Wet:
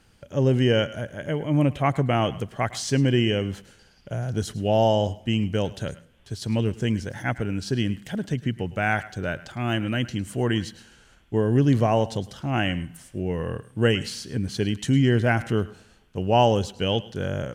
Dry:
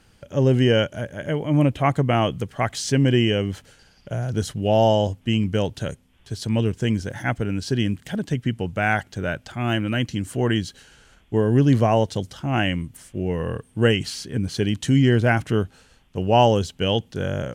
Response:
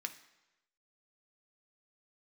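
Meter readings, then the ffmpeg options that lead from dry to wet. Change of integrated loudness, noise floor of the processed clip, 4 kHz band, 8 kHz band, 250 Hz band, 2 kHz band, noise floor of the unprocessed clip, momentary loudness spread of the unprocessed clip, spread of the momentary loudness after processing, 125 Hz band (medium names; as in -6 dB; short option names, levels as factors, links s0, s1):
-2.5 dB, -57 dBFS, -2.5 dB, -2.5 dB, -2.5 dB, -2.5 dB, -57 dBFS, 11 LU, 11 LU, -2.5 dB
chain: -filter_complex "[0:a]asplit=2[s0][s1];[1:a]atrim=start_sample=2205,asetrate=34839,aresample=44100,adelay=106[s2];[s1][s2]afir=irnorm=-1:irlink=0,volume=0.15[s3];[s0][s3]amix=inputs=2:normalize=0,volume=0.75"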